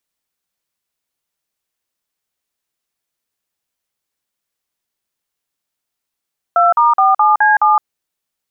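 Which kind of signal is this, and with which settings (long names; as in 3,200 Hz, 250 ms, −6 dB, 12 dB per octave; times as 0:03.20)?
touch tones "2*47C7", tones 165 ms, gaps 46 ms, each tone −10.5 dBFS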